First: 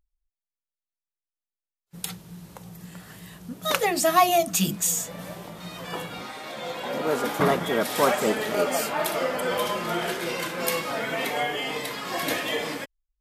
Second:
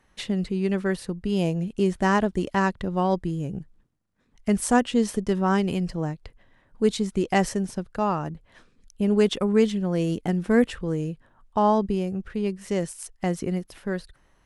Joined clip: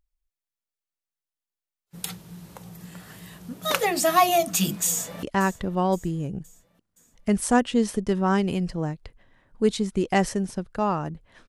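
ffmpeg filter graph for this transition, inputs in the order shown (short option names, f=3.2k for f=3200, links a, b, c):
-filter_complex "[0:a]apad=whole_dur=11.48,atrim=end=11.48,atrim=end=5.232[a];[1:a]atrim=start=2.428:end=8.68[b];[a][b]acrossfade=d=0.004:c1=hsin:c2=hsin,asplit=2[c][d];[d]afade=t=in:st=4.88:d=0.01,afade=t=out:st=5.23:d=0.01,aecho=0:1:520|1040|1560|2080:0.158489|0.0792447|0.0396223|0.0198112[e];[c][e]amix=inputs=2:normalize=0"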